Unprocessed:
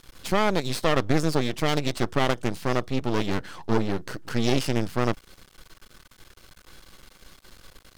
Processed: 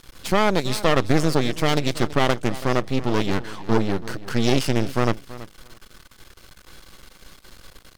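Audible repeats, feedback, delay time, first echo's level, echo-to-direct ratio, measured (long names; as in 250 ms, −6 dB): 2, 15%, 330 ms, −17.0 dB, −17.0 dB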